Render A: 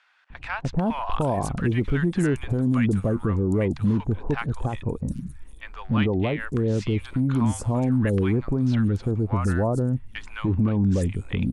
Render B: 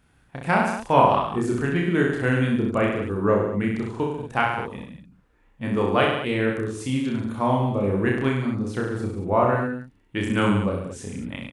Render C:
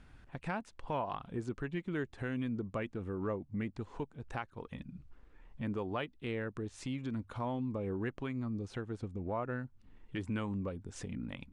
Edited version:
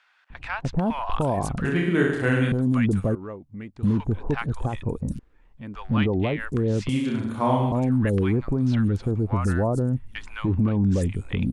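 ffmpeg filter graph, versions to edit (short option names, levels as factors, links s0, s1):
-filter_complex "[1:a]asplit=2[s0][s1];[2:a]asplit=2[s2][s3];[0:a]asplit=5[s4][s5][s6][s7][s8];[s4]atrim=end=1.652[s9];[s0]atrim=start=1.648:end=2.522[s10];[s5]atrim=start=2.518:end=3.152[s11];[s2]atrim=start=3.148:end=3.832[s12];[s6]atrim=start=3.828:end=5.192[s13];[s3]atrim=start=5.188:end=5.752[s14];[s7]atrim=start=5.748:end=6.892[s15];[s1]atrim=start=6.888:end=7.722[s16];[s8]atrim=start=7.718[s17];[s9][s10]acrossfade=d=0.004:c1=hsin:c2=hsin[s18];[s18][s11]acrossfade=d=0.004:c1=hsin:c2=hsin[s19];[s19][s12]acrossfade=d=0.004:c1=hsin:c2=hsin[s20];[s20][s13]acrossfade=d=0.004:c1=hsin:c2=hsin[s21];[s21][s14]acrossfade=d=0.004:c1=hsin:c2=hsin[s22];[s22][s15]acrossfade=d=0.004:c1=hsin:c2=hsin[s23];[s23][s16]acrossfade=d=0.004:c1=hsin:c2=hsin[s24];[s24][s17]acrossfade=d=0.004:c1=hsin:c2=hsin"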